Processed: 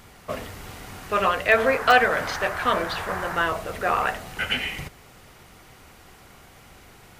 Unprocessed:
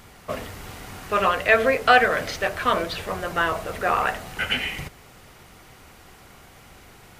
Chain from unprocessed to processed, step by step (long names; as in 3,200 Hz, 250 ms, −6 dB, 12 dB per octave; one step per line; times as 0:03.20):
in parallel at −11.5 dB: wrap-around overflow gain 4 dB
0:01.56–0:03.36: on the sum: noise in a band 680–1,800 Hz −30 dBFS
level −3 dB